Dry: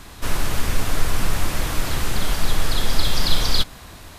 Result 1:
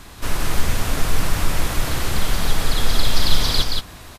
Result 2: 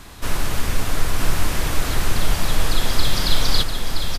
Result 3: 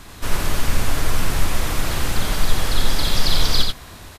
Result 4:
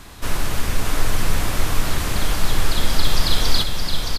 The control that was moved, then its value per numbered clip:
delay, time: 175 ms, 971 ms, 88 ms, 619 ms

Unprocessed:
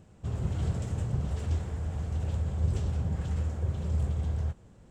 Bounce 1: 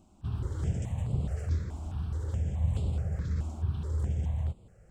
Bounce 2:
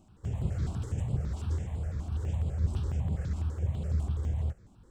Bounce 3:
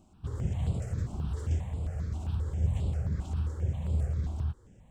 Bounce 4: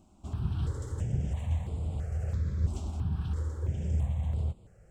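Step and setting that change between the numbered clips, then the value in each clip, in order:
stepped phaser, rate: 4.7 Hz, 12 Hz, 7.5 Hz, 3 Hz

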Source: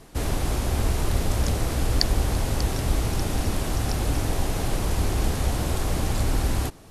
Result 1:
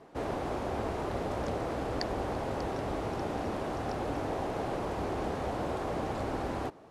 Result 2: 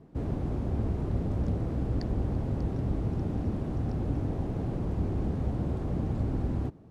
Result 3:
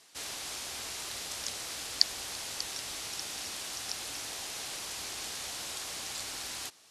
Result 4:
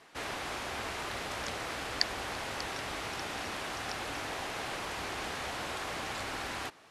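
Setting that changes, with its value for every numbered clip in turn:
band-pass filter, frequency: 630 Hz, 180 Hz, 5.2 kHz, 1.9 kHz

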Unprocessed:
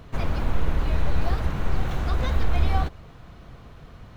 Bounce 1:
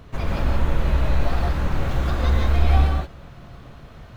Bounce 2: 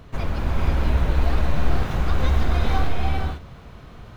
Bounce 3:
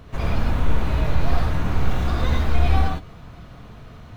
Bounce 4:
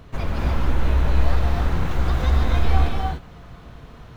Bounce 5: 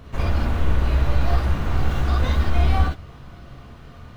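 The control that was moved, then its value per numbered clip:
gated-style reverb, gate: 200 ms, 520 ms, 130 ms, 320 ms, 80 ms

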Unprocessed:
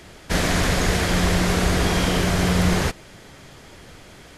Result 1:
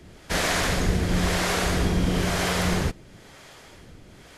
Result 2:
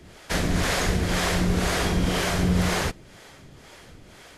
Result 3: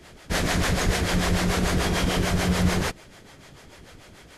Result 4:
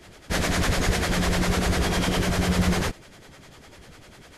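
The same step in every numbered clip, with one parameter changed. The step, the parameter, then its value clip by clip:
harmonic tremolo, rate: 1 Hz, 2 Hz, 6.8 Hz, 10 Hz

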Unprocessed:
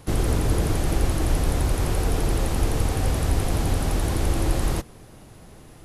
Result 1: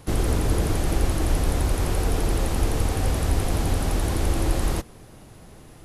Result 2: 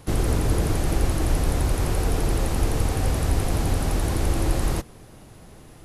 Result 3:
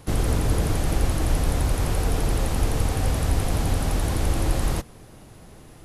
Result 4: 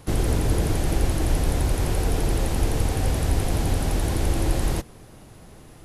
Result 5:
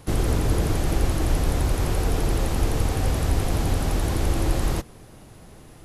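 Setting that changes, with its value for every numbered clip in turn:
dynamic bell, frequency: 130 Hz, 3.3 kHz, 360 Hz, 1.2 kHz, 9.5 kHz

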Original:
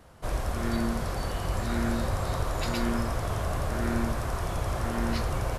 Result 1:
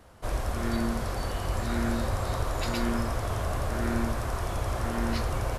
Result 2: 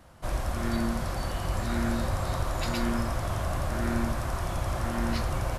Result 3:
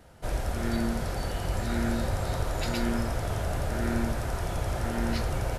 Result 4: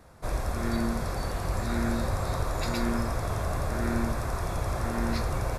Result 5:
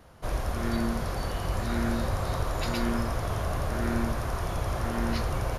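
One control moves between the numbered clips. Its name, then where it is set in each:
band-stop, frequency: 160 Hz, 440 Hz, 1.1 kHz, 3 kHz, 7.9 kHz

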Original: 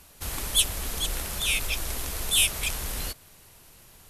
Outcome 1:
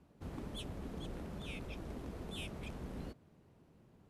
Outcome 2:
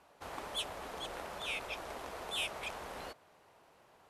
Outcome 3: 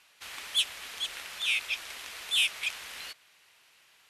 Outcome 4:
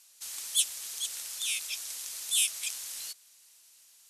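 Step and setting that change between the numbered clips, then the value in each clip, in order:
band-pass filter, frequency: 220 Hz, 740 Hz, 2.4 kHz, 6.7 kHz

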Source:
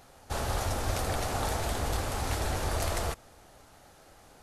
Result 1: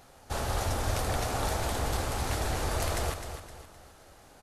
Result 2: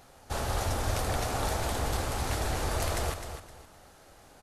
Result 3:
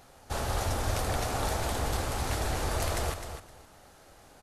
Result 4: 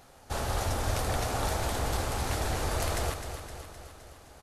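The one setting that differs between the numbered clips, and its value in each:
feedback delay, feedback: 39%, 26%, 17%, 60%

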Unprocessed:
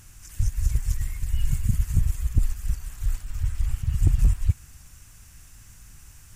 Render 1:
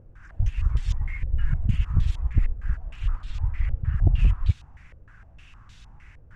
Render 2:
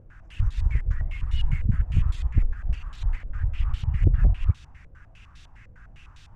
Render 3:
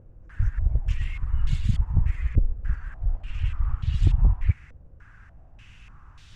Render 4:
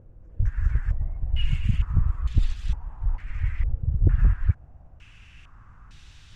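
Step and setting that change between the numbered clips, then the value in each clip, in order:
step-sequenced low-pass, rate: 6.5 Hz, 9.9 Hz, 3.4 Hz, 2.2 Hz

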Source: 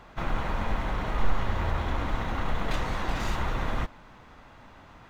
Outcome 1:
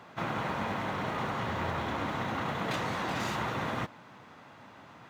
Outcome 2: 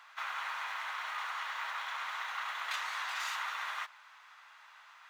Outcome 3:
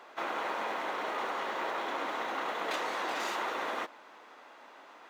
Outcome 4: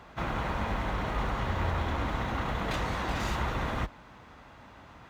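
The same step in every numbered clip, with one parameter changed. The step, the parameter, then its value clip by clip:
high-pass, cutoff frequency: 110 Hz, 1.1 kHz, 340 Hz, 43 Hz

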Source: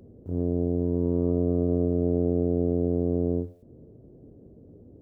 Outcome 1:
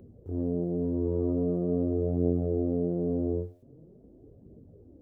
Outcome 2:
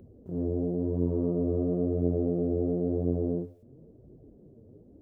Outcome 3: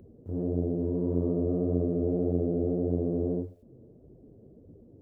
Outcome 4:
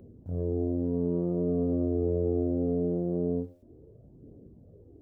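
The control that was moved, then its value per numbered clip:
flange, rate: 0.44 Hz, 0.97 Hz, 1.7 Hz, 0.23 Hz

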